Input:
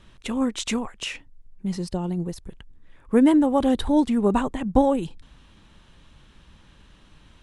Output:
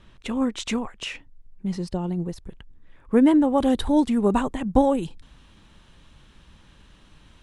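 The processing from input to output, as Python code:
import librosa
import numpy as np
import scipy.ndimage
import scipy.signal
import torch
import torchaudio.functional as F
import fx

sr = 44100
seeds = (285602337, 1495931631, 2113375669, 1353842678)

y = fx.high_shelf(x, sr, hz=6400.0, db=fx.steps((0.0, -8.0), (3.57, 2.0)))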